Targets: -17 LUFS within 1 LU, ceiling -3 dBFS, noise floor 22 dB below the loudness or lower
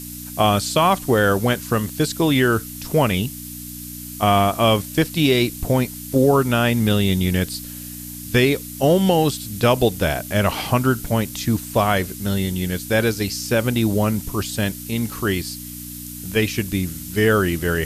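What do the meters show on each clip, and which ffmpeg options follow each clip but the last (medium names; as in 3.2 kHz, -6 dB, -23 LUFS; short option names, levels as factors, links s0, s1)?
hum 60 Hz; highest harmonic 300 Hz; hum level -36 dBFS; noise floor -34 dBFS; noise floor target -42 dBFS; loudness -20.0 LUFS; peak level -4.0 dBFS; loudness target -17.0 LUFS
-> -af "bandreject=f=60:t=h:w=4,bandreject=f=120:t=h:w=4,bandreject=f=180:t=h:w=4,bandreject=f=240:t=h:w=4,bandreject=f=300:t=h:w=4"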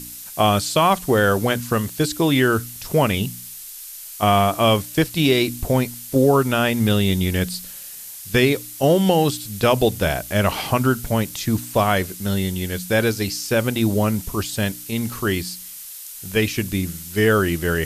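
hum not found; noise floor -37 dBFS; noise floor target -42 dBFS
-> -af "afftdn=nr=6:nf=-37"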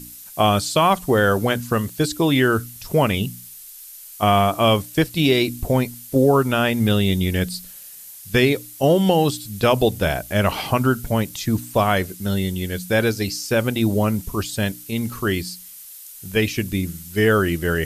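noise floor -40 dBFS; noise floor target -42 dBFS
-> -af "afftdn=nr=6:nf=-40"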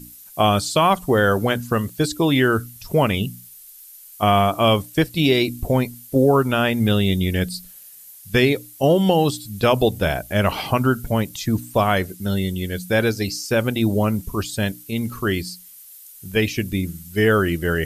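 noise floor -44 dBFS; loudness -20.5 LUFS; peak level -3.5 dBFS; loudness target -17.0 LUFS
-> -af "volume=1.5,alimiter=limit=0.708:level=0:latency=1"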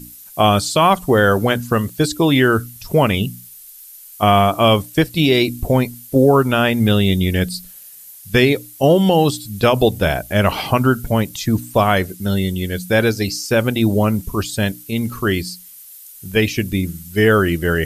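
loudness -17.0 LUFS; peak level -3.0 dBFS; noise floor -40 dBFS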